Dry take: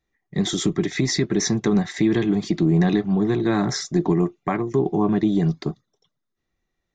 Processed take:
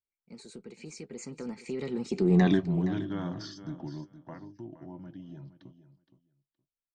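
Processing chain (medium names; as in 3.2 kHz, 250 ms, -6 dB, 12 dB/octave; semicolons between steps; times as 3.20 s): Doppler pass-by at 2.43 s, 54 m/s, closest 9.8 m; feedback delay 468 ms, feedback 16%, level -13.5 dB; trim -3 dB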